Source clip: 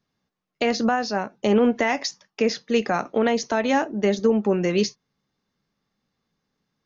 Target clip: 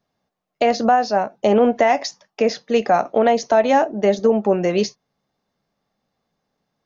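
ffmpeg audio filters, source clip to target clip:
-af "equalizer=f=670:w=1.7:g=11"

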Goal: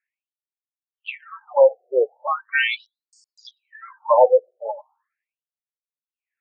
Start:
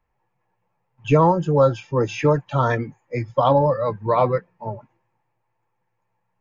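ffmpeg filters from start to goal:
-filter_complex "[0:a]aemphasis=mode=reproduction:type=75kf,asettb=1/sr,asplit=3[a][b][c];[a]atrim=end=2.274[d];[b]atrim=start=2.27:end=3.47,asetpts=PTS-STARTPTS,afade=t=in:d=0.004:c=qsin,afade=t=out:st=1.196:d=0.004:c=qsin,aeval=exprs='val(0)*sin(2*PI*1700*n/s)':c=same[e];[c]atrim=start=3.466[f];[d][e]acrossfade=d=0.004:c1=hsin:c2=qsin[g];[g][f]acrossfade=d=0.004:c1=qsin:c2=hsin,asettb=1/sr,asplit=3[h][i][j];[h]atrim=end=4.024[k];[i]atrim=start=4.02:end=4.72,asetpts=PTS-STARTPTS,afade=t=in:d=0.004:c=qsin,afade=t=out:st=0.696:d=0.004:c=qsin,aecho=1:1:3.6:0.74,atrim=end_sample=30870[l];[j]atrim=start=4.716[m];[k][l]acrossfade=d=0.004:c1=hsin:c2=qsin[n];[n][m]acrossfade=d=0.004:c1=qsin:c2=hsin,acrossover=split=3000[o][p];[p]aeval=exprs='val(0)*gte(abs(val(0)),0.00422)':c=same[q];[o][q]amix=inputs=2:normalize=0,afftfilt=real='re*between(b*sr/1024,520*pow(6200/520,0.5+0.5*sin(2*PI*0.39*pts/sr))/1.41,520*pow(6200/520,0.5+0.5*sin(2*PI*0.39*pts/sr))*1.41)':imag='im*between(b*sr/1024,520*pow(6200/520,0.5+0.5*sin(2*PI*0.39*pts/sr))/1.41,520*pow(6200/520,0.5+0.5*sin(2*PI*0.39*pts/sr))*1.41)':win_size=1024:overlap=0.75,volume=4.5dB"

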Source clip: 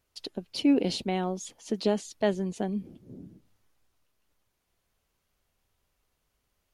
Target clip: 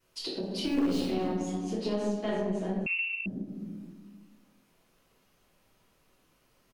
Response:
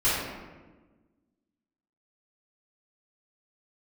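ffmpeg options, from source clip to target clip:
-filter_complex "[0:a]asettb=1/sr,asplit=3[a][b][c];[a]atrim=end=0.644[d];[b]atrim=start=0.64:end=1.08,asetpts=PTS-STARTPTS,afade=t=in:d=0.004:c=qsin,afade=t=out:st=0.436:d=0.004:c=qsin,aeval=exprs='val(0)+0.5*0.0282*sgn(val(0))':c=same[e];[c]atrim=start=1.076[f];[d][e]acrossfade=d=0.004:c1=hsin:c2=qsin[g];[g][f]acrossfade=d=0.004:c1=qsin:c2=hsin,lowshelf=f=110:t=q:w=1.5:g=-13,asplit=2[h][i];[i]adelay=24,volume=-11dB[j];[h][j]amix=inputs=2:normalize=0,aecho=1:1:261:0.1[k];[1:a]atrim=start_sample=2205[l];[k][l]afir=irnorm=-1:irlink=0,aeval=exprs='1.26*(cos(1*acos(clip(val(0)/1.26,-1,1)))-cos(1*PI/2))+0.141*(cos(4*acos(clip(val(0)/1.26,-1,1)))-cos(4*PI/2))':c=same,acompressor=threshold=-32dB:ratio=2.5,asettb=1/sr,asplit=3[m][n][o];[m]atrim=end=2.864[p];[n]atrim=start=2.86:end=3.26,asetpts=PTS-STARTPTS,afade=t=in:d=0.004:c=qsin,afade=t=out:st=0.396:d=0.004:c=qsin,lowpass=f=2.5k:t=q:w=0.5098,lowpass=f=2.5k:t=q:w=0.6013,lowpass=f=2.5k:t=q:w=0.9,lowpass=f=2.5k:t=q:w=2.563,afreqshift=-2900[q];[o]atrim=start=3.256[r];[p][q]acrossfade=d=0.004:c1=hsin:c2=qsin[s];[s][r]acrossfade=d=0.004:c1=qsin:c2=hsin,volume=-3.5dB"

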